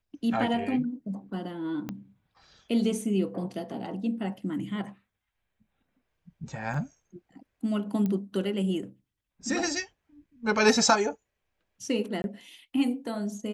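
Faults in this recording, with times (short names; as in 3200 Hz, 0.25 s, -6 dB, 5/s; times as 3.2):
1.89 pop -20 dBFS
6.74 gap 3.5 ms
8.06 pop -19 dBFS
12.22–12.24 gap 21 ms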